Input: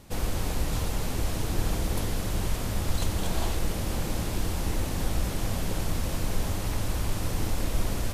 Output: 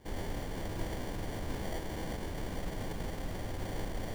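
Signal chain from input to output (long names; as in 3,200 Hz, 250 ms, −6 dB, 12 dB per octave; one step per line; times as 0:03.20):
low-shelf EQ 280 Hz −7 dB
decimation without filtering 34×
phase-vocoder stretch with locked phases 0.51×
level −2.5 dB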